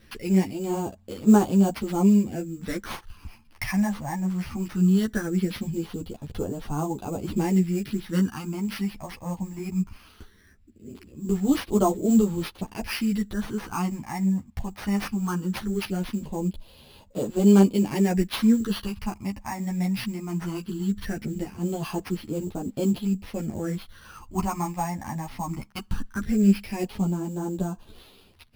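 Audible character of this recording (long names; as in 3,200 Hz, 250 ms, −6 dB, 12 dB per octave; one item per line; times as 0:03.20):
phaser sweep stages 8, 0.19 Hz, lowest notch 410–2,000 Hz
aliases and images of a low sample rate 7,500 Hz, jitter 0%
a shimmering, thickened sound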